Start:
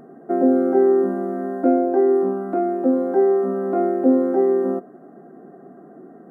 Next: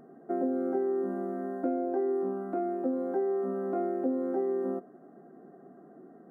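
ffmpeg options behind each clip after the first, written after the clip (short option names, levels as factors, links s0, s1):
-af "acompressor=threshold=0.141:ratio=6,volume=0.355"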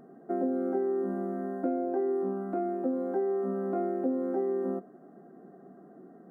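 -af "equalizer=f=190:t=o:w=0.22:g=5"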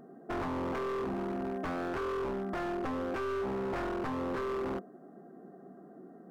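-af "aeval=exprs='0.0335*(abs(mod(val(0)/0.0335+3,4)-2)-1)':c=same"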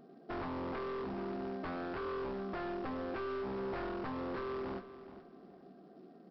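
-af "aresample=11025,acrusher=bits=6:mode=log:mix=0:aa=0.000001,aresample=44100,aecho=1:1:423|846|1269:0.2|0.0499|0.0125,volume=0.562"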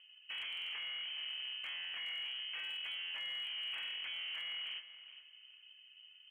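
-af "lowpass=f=2800:t=q:w=0.5098,lowpass=f=2800:t=q:w=0.6013,lowpass=f=2800:t=q:w=0.9,lowpass=f=2800:t=q:w=2.563,afreqshift=-3300,volume=39.8,asoftclip=hard,volume=0.0251,volume=0.668"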